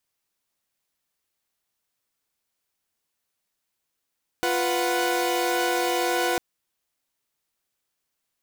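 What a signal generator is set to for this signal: chord F4/B4/F#5 saw, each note -24 dBFS 1.95 s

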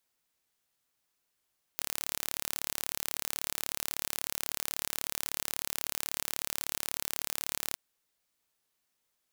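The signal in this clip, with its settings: pulse train 36.3 per s, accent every 0, -6 dBFS 5.97 s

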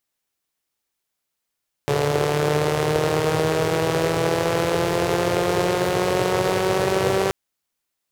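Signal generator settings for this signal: four-cylinder engine model, changing speed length 5.43 s, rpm 4300, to 5800, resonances 130/420 Hz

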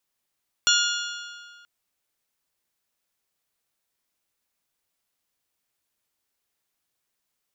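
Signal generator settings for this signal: metal hit bell, length 0.98 s, lowest mode 1.42 kHz, modes 6, decay 1.99 s, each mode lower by 0.5 dB, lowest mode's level -21 dB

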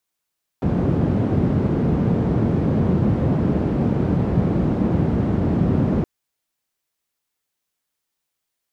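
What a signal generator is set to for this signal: noise band 89–210 Hz, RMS -19 dBFS 5.42 s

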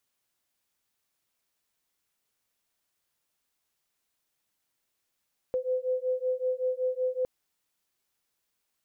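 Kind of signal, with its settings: beating tones 507 Hz, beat 5.3 Hz, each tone -29.5 dBFS 1.71 s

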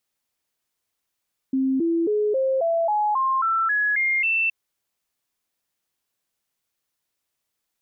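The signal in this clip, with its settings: stepped sine 265 Hz up, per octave 3, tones 11, 0.27 s, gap 0.00 s -18.5 dBFS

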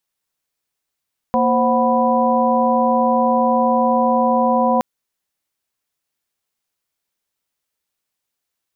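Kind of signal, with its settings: chord A#3/C5/F#5/B5 sine, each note -18.5 dBFS 3.47 s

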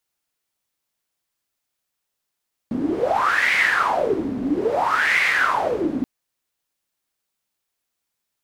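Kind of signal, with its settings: wind-like swept noise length 3.33 s, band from 250 Hz, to 2.1 kHz, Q 8.8, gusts 2, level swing 6 dB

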